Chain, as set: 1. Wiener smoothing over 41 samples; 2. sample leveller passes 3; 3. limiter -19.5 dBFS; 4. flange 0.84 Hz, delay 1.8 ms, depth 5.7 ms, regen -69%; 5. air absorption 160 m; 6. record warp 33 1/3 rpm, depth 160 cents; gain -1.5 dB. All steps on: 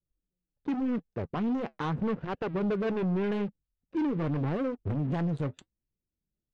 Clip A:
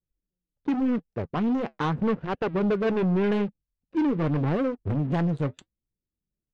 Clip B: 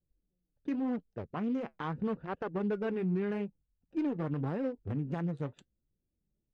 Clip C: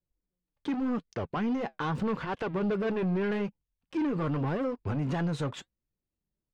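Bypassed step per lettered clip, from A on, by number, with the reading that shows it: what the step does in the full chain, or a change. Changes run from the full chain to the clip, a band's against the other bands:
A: 3, mean gain reduction 4.0 dB; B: 2, crest factor change +2.0 dB; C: 1, 4 kHz band +3.5 dB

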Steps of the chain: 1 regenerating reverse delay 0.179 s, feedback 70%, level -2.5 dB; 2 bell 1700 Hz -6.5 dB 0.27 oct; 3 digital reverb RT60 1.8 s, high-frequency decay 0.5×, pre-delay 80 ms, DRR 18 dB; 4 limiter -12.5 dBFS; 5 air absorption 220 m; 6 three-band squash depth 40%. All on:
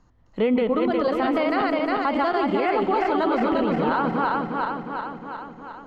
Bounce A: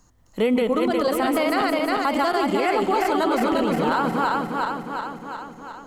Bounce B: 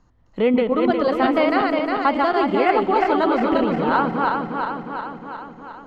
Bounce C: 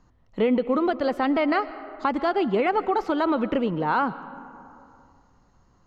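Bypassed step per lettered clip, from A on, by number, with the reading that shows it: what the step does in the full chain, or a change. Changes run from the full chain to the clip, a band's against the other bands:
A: 5, 4 kHz band +4.5 dB; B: 4, mean gain reduction 2.0 dB; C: 1, loudness change -1.5 LU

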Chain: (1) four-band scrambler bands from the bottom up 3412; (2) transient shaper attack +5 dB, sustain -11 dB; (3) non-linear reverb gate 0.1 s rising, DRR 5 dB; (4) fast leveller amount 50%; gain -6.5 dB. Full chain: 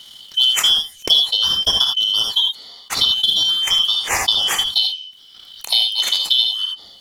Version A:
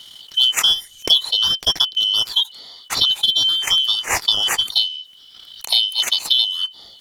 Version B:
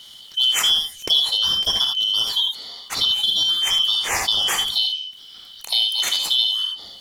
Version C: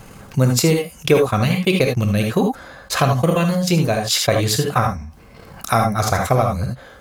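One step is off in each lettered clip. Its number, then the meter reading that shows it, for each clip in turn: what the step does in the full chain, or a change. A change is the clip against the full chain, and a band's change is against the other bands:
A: 3, loudness change -1.0 LU; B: 2, crest factor change -2.0 dB; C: 1, 4 kHz band -24.5 dB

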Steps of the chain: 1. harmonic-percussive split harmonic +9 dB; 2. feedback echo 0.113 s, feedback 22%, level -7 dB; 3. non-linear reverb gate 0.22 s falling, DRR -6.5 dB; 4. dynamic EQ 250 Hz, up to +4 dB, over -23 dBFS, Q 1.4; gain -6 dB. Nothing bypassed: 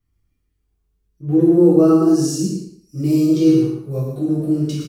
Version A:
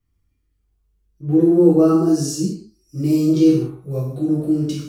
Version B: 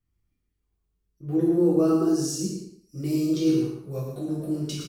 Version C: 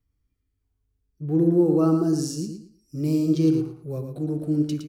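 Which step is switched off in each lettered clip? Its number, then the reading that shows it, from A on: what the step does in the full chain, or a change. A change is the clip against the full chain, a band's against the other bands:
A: 2, loudness change -1.0 LU; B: 1, 4 kHz band +5.0 dB; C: 3, momentary loudness spread change +2 LU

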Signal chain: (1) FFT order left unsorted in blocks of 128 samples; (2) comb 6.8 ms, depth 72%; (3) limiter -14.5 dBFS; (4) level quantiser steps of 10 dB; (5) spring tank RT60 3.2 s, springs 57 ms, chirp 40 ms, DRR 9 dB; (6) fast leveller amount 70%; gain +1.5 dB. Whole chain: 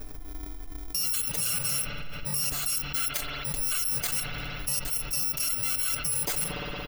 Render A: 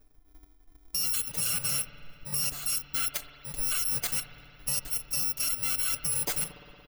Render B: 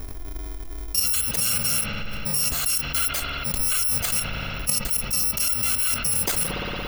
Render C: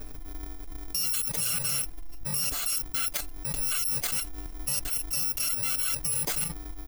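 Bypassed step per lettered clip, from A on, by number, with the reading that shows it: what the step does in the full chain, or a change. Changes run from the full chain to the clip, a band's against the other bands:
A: 6, 8 kHz band +3.5 dB; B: 2, crest factor change -1.5 dB; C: 5, 8 kHz band +2.5 dB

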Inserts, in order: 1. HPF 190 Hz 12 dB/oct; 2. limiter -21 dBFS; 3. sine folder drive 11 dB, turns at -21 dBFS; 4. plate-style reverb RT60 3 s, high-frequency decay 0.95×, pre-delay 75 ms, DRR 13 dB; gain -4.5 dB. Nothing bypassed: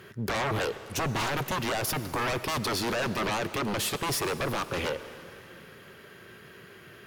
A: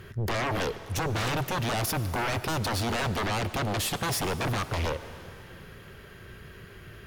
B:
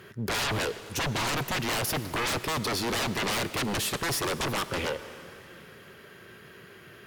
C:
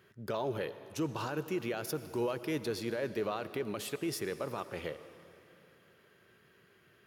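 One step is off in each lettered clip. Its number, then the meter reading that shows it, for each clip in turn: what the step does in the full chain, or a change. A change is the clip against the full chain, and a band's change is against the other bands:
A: 1, 125 Hz band +5.0 dB; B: 2, mean gain reduction 2.5 dB; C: 3, crest factor change +4.0 dB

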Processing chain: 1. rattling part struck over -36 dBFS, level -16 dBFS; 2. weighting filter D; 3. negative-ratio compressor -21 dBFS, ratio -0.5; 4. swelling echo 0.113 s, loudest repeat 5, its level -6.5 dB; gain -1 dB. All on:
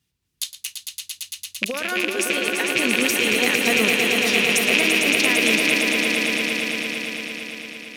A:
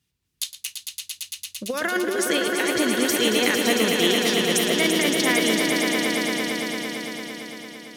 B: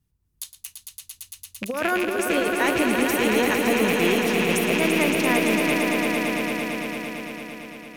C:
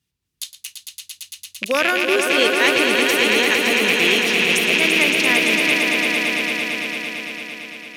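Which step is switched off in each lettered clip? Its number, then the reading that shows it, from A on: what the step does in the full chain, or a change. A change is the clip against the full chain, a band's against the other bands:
1, 2 kHz band -7.0 dB; 2, 4 kHz band -11.0 dB; 3, crest factor change -3.5 dB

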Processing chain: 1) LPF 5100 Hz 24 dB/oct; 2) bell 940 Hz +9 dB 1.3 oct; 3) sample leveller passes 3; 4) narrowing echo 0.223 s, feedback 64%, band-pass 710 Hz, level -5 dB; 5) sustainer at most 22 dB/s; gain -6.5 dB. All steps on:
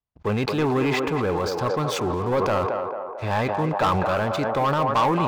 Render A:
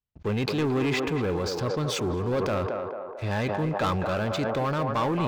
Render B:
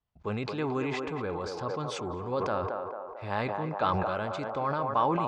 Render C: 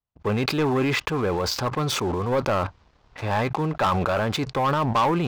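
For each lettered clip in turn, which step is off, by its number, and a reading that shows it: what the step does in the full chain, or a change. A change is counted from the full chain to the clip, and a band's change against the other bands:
2, 1 kHz band -5.5 dB; 3, crest factor change +4.5 dB; 4, momentary loudness spread change -1 LU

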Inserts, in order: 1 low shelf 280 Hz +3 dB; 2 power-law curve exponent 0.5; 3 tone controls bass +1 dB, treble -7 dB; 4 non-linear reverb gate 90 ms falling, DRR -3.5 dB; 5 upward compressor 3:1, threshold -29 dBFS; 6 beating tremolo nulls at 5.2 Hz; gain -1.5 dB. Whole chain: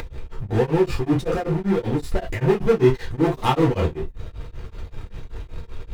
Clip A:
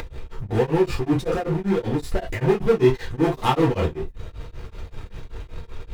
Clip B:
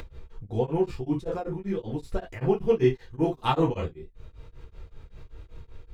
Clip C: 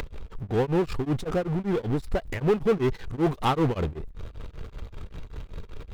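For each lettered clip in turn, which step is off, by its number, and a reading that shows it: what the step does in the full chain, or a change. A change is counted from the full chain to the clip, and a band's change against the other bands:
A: 1, 125 Hz band -1.5 dB; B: 2, crest factor change +2.0 dB; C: 4, momentary loudness spread change -1 LU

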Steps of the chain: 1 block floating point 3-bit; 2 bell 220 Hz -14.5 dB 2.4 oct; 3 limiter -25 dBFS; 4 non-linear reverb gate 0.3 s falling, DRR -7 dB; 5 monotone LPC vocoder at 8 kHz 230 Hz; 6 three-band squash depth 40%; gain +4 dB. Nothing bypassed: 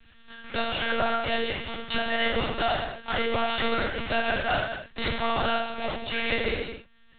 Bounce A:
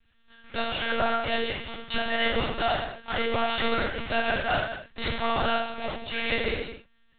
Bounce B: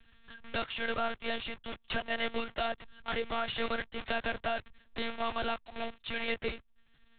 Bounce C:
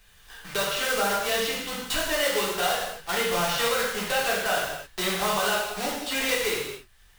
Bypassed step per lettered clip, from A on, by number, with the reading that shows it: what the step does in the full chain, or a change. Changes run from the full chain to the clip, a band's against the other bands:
6, momentary loudness spread change +1 LU; 4, crest factor change +2.5 dB; 5, 125 Hz band -5.0 dB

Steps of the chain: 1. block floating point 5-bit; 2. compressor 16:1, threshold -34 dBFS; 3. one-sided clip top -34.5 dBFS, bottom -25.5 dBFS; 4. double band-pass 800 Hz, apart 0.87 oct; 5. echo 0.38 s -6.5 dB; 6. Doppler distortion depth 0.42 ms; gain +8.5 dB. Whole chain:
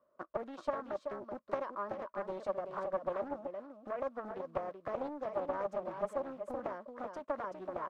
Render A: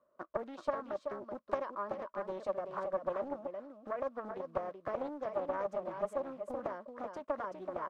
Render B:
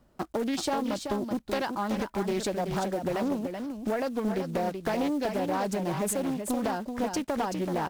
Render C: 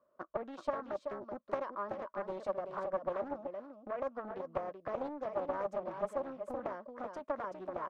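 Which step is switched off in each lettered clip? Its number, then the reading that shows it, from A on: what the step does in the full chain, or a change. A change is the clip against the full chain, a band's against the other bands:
3, distortion -20 dB; 4, 125 Hz band +9.0 dB; 1, distortion -24 dB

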